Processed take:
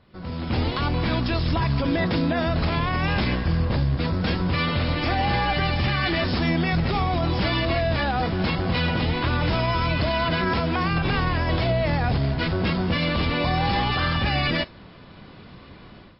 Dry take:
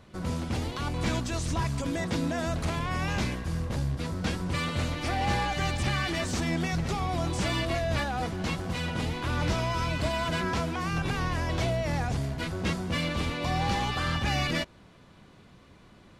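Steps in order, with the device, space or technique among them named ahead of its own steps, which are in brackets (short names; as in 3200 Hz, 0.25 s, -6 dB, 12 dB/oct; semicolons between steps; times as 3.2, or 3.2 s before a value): low-bitrate web radio (AGC gain up to 14 dB; limiter -10 dBFS, peak gain reduction 7 dB; gain -3.5 dB; MP3 24 kbps 12000 Hz)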